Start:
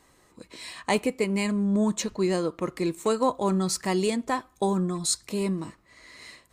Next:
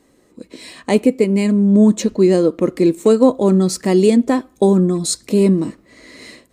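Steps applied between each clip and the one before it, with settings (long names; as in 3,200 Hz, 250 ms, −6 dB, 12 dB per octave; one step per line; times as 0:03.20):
graphic EQ with 10 bands 250 Hz +11 dB, 500 Hz +7 dB, 1,000 Hz −5 dB
automatic gain control gain up to 7.5 dB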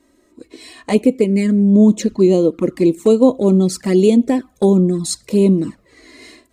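flanger swept by the level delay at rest 3.2 ms, full sweep at −9.5 dBFS
level +1 dB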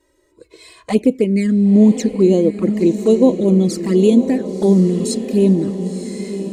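flanger swept by the level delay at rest 2.1 ms, full sweep at −8.5 dBFS
feedback delay with all-pass diffusion 1,022 ms, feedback 50%, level −10 dB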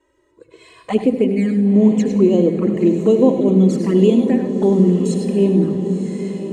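convolution reverb RT60 3.5 s, pre-delay 71 ms, DRR 8.5 dB
level −6 dB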